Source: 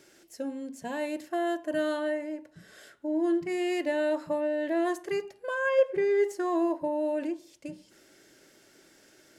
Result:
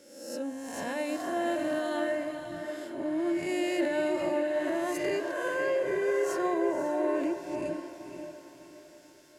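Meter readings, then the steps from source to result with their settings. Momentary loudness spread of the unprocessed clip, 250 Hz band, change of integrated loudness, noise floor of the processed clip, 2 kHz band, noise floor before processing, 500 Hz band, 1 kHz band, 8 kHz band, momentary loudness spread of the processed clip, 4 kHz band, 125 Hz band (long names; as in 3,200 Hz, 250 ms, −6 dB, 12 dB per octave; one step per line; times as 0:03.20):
13 LU, −0.5 dB, −1.0 dB, −54 dBFS, 0.0 dB, −60 dBFS, −1.0 dB, +0.5 dB, +5.0 dB, 10 LU, +1.5 dB, can't be measured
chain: peak hold with a rise ahead of every peak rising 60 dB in 1.24 s
brickwall limiter −23.5 dBFS, peak gain reduction 10.5 dB
on a send: feedback delay with all-pass diffusion 534 ms, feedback 51%, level −6 dB
on the sum: multiband upward and downward expander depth 40%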